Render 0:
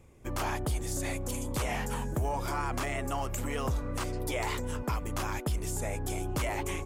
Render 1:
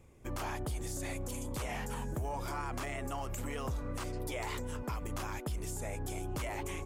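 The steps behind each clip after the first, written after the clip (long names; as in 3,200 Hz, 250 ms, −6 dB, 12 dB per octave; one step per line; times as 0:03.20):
brickwall limiter −27.5 dBFS, peak gain reduction 4.5 dB
level −2.5 dB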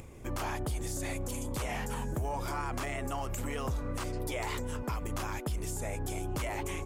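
upward compression, threshold −43 dBFS
level +3 dB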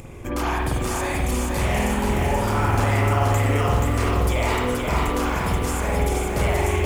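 spring reverb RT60 1 s, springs 48 ms, chirp 30 ms, DRR −3.5 dB
feedback echo at a low word length 479 ms, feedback 55%, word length 9 bits, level −3 dB
level +7 dB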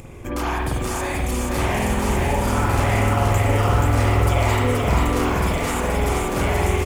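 single-tap delay 1,152 ms −3.5 dB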